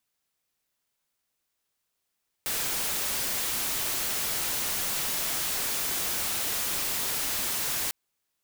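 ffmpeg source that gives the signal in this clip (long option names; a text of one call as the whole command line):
ffmpeg -f lavfi -i "anoisesrc=color=white:amplitude=0.058:duration=5.45:sample_rate=44100:seed=1" out.wav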